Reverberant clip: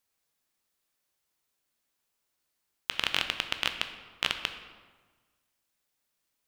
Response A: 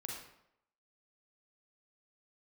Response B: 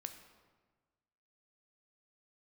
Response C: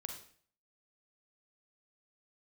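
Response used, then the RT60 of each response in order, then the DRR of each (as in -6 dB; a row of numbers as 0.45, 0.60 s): B; 0.75, 1.4, 0.50 s; -1.5, 6.5, 3.0 dB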